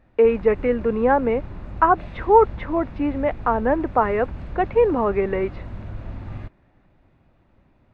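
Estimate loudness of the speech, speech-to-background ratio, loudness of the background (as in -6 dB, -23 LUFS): -21.0 LUFS, 15.5 dB, -36.5 LUFS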